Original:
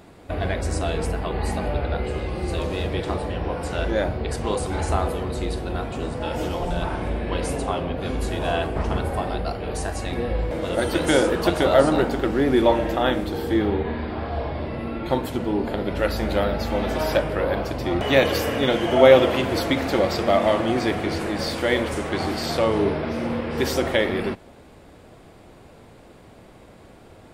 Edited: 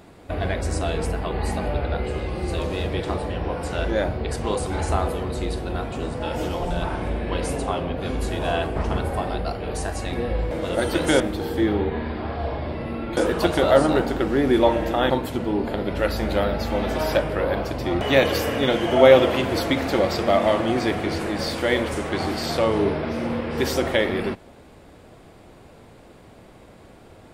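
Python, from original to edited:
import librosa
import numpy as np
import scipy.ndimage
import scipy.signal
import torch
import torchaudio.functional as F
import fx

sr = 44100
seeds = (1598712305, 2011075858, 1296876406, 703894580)

y = fx.edit(x, sr, fx.move(start_s=11.2, length_s=1.93, to_s=15.1), tone=tone)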